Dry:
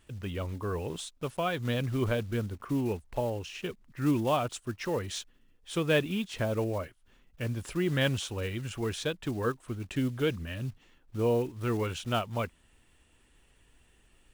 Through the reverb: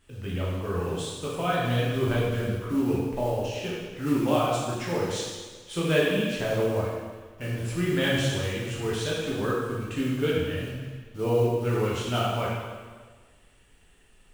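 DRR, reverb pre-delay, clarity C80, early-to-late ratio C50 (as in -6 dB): -6.0 dB, 4 ms, 1.5 dB, -1.0 dB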